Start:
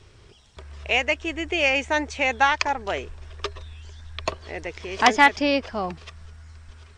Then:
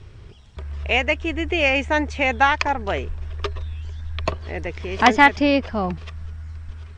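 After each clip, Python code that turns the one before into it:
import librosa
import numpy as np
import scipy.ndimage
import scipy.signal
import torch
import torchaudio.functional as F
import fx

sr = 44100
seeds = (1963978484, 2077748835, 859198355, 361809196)

y = fx.bass_treble(x, sr, bass_db=8, treble_db=-7)
y = y * librosa.db_to_amplitude(2.5)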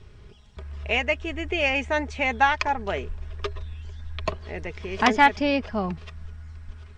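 y = x + 0.35 * np.pad(x, (int(4.8 * sr / 1000.0), 0))[:len(x)]
y = y * librosa.db_to_amplitude(-4.5)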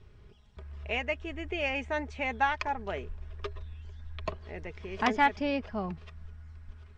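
y = fx.high_shelf(x, sr, hz=3900.0, db=-6.0)
y = y * librosa.db_to_amplitude(-7.0)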